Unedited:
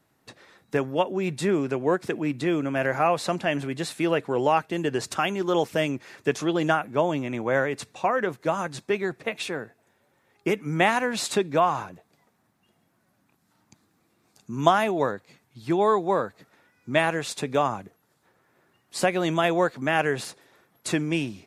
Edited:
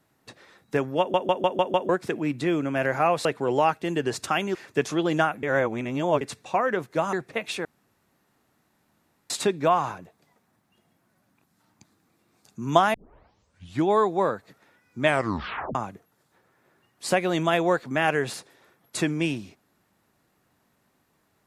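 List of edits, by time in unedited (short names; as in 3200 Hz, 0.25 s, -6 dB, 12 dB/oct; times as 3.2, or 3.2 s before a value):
0.99 stutter in place 0.15 s, 6 plays
3.25–4.13 cut
5.43–6.05 cut
6.93–7.71 reverse
8.63–9.04 cut
9.56–11.21 room tone
14.85 tape start 0.93 s
16.96 tape stop 0.70 s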